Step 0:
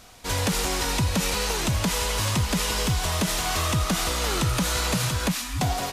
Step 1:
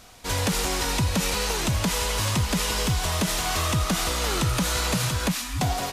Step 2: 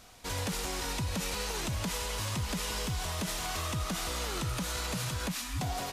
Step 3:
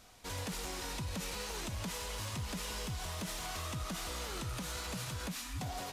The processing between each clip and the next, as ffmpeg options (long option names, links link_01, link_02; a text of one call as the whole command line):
ffmpeg -i in.wav -af anull out.wav
ffmpeg -i in.wav -af "alimiter=limit=-20dB:level=0:latency=1:release=83,aeval=exprs='0.376*(cos(1*acos(clip(val(0)/0.376,-1,1)))-cos(1*PI/2))+0.015*(cos(3*acos(clip(val(0)/0.376,-1,1)))-cos(3*PI/2))':channel_layout=same,volume=-4.5dB" out.wav
ffmpeg -i in.wav -filter_complex "[0:a]flanger=delay=3.2:depth=7.6:regen=-76:speed=1.8:shape=sinusoidal,asplit=2[link_01][link_02];[link_02]asoftclip=type=tanh:threshold=-39.5dB,volume=-6.5dB[link_03];[link_01][link_03]amix=inputs=2:normalize=0,volume=-3.5dB" out.wav